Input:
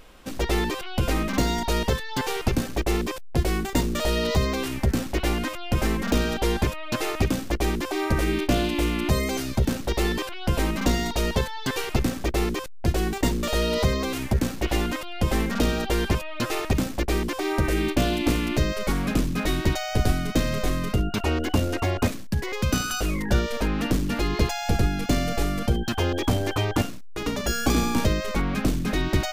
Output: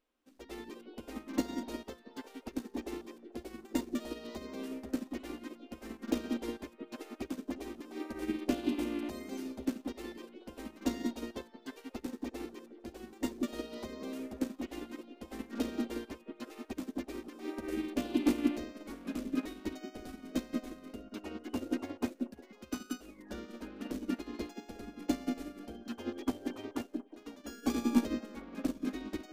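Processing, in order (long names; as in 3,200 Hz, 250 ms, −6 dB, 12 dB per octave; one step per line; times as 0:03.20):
low shelf with overshoot 190 Hz −9 dB, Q 3
echo through a band-pass that steps 180 ms, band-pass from 250 Hz, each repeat 0.7 octaves, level −0.5 dB
expander for the loud parts 2.5 to 1, over −29 dBFS
level −8 dB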